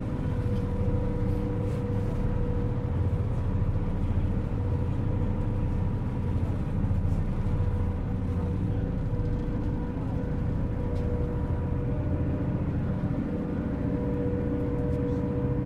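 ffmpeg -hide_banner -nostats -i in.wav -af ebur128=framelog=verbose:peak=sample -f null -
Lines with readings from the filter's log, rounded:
Integrated loudness:
  I:         -29.5 LUFS
  Threshold: -39.5 LUFS
Loudness range:
  LRA:         1.0 LU
  Threshold: -49.6 LUFS
  LRA low:   -30.3 LUFS
  LRA high:  -29.2 LUFS
Sample peak:
  Peak:      -15.1 dBFS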